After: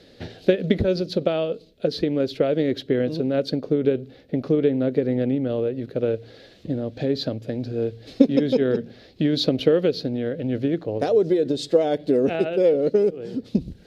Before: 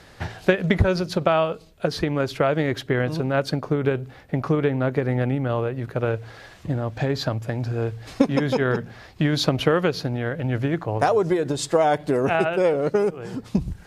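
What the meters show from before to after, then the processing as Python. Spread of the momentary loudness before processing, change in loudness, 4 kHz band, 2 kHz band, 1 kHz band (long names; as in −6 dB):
8 LU, +0.5 dB, −0.5 dB, −9.5 dB, −10.0 dB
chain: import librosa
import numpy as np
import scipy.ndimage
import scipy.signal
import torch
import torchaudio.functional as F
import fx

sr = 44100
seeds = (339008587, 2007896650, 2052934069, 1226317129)

y = fx.graphic_eq(x, sr, hz=(250, 500, 1000, 4000, 8000), db=(11, 12, -11, 12, -5))
y = y * librosa.db_to_amplitude(-9.0)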